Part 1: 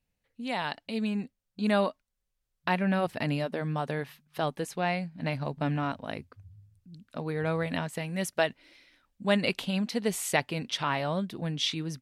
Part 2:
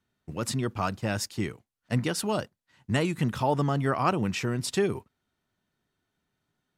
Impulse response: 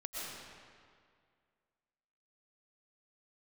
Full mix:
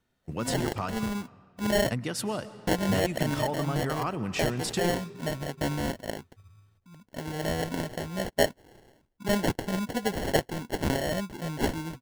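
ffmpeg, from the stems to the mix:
-filter_complex "[0:a]lowshelf=f=340:g=-6.5,bandreject=f=470:w=15,acrusher=samples=36:mix=1:aa=0.000001,volume=3dB[a];[1:a]acompressor=threshold=-30dB:ratio=6,volume=1dB,asplit=3[b][c][d];[b]atrim=end=1.04,asetpts=PTS-STARTPTS,afade=t=out:st=1.036:d=0.004:c=hsin[e];[c]atrim=start=1.04:end=1.74,asetpts=PTS-STARTPTS,volume=0[f];[d]atrim=start=1.74,asetpts=PTS-STARTPTS,afade=t=in:d=0.004:c=hsin[g];[e][f][g]concat=n=3:v=0:a=1,asplit=2[h][i];[i]volume=-13dB[j];[2:a]atrim=start_sample=2205[k];[j][k]afir=irnorm=-1:irlink=0[l];[a][h][l]amix=inputs=3:normalize=0"

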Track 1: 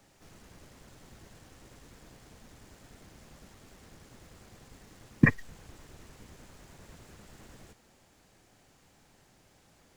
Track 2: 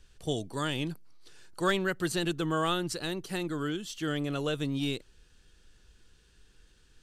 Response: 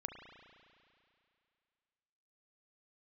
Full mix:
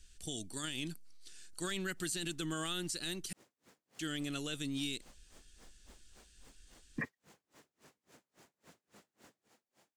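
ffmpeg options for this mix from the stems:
-filter_complex "[0:a]highpass=220,dynaudnorm=f=780:g=5:m=8.5dB,aeval=exprs='val(0)*pow(10,-36*(0.5-0.5*cos(2*PI*3.6*n/s))/20)':c=same,adelay=1750,volume=-10dB[a];[1:a]equalizer=f=125:t=o:w=1:g=-10,equalizer=f=500:t=o:w=1:g=-11,equalizer=f=1k:t=o:w=1:g=-11,equalizer=f=8k:t=o:w=1:g=8,volume=-0.5dB,asplit=3[b][c][d];[b]atrim=end=3.33,asetpts=PTS-STARTPTS,afade=t=out:st=3.326:d=0.004:c=hsin[e];[c]atrim=start=3.33:end=3.99,asetpts=PTS-STARTPTS,volume=0[f];[d]atrim=start=3.99,asetpts=PTS-STARTPTS,afade=t=in:d=0.004:c=hsin[g];[e][f][g]concat=n=3:v=0:a=1[h];[a][h]amix=inputs=2:normalize=0,alimiter=level_in=4dB:limit=-24dB:level=0:latency=1:release=32,volume=-4dB"

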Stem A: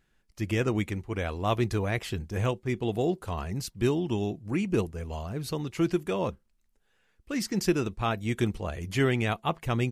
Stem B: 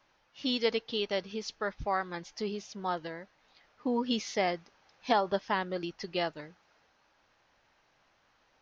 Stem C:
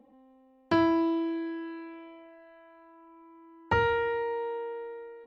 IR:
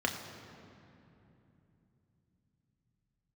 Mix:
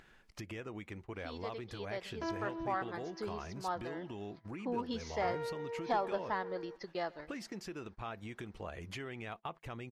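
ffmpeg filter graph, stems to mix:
-filter_complex "[0:a]alimiter=limit=-24dB:level=0:latency=1:release=292,acompressor=threshold=-44dB:ratio=3,volume=0.5dB,asplit=2[a][b];[1:a]dynaudnorm=f=480:g=5:m=12.5dB,equalizer=f=2.8k:t=o:w=0.56:g=-9,adelay=800,volume=-18dB,asplit=2[c][d];[d]volume=-23.5dB[e];[2:a]equalizer=f=480:t=o:w=0.77:g=7.5,adelay=1500,volume=-9.5dB[f];[b]apad=whole_len=298149[g];[f][g]sidechaincompress=threshold=-50dB:ratio=8:attack=8.2:release=270[h];[e]aecho=0:1:131|262|393|524|655|786|917|1048:1|0.53|0.281|0.149|0.0789|0.0418|0.0222|0.0117[i];[a][c][h][i]amix=inputs=4:normalize=0,agate=range=-18dB:threshold=-49dB:ratio=16:detection=peak,acompressor=mode=upward:threshold=-39dB:ratio=2.5,asplit=2[j][k];[k]highpass=f=720:p=1,volume=9dB,asoftclip=type=tanh:threshold=-21dB[l];[j][l]amix=inputs=2:normalize=0,lowpass=f=2k:p=1,volume=-6dB"

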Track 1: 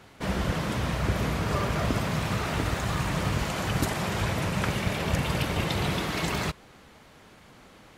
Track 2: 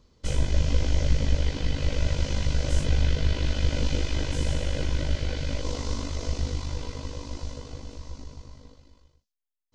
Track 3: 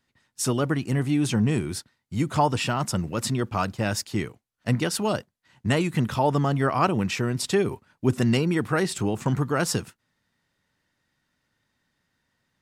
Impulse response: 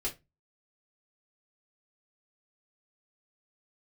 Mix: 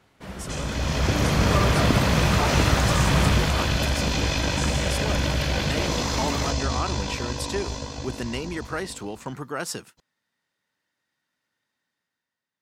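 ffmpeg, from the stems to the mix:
-filter_complex "[0:a]volume=-2.5dB,afade=t=in:st=0.71:d=0.74:silence=0.473151,afade=t=out:st=3.25:d=0.55:silence=0.354813[a];[1:a]highpass=f=200:p=1,aecho=1:1:1.2:0.44,adelay=250,volume=0.5dB[b];[2:a]highpass=f=380:p=1,volume=-13dB[c];[b][c]amix=inputs=2:normalize=0,alimiter=level_in=0.5dB:limit=-24dB:level=0:latency=1:release=12,volume=-0.5dB,volume=0dB[d];[a][d]amix=inputs=2:normalize=0,dynaudnorm=f=120:g=13:m=9dB"

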